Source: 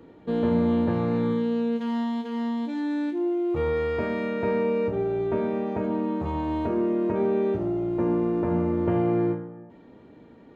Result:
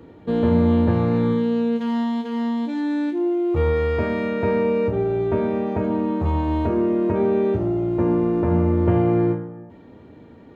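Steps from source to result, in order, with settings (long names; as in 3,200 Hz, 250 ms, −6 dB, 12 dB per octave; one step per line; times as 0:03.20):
parametric band 88 Hz +9 dB 0.78 octaves
level +4 dB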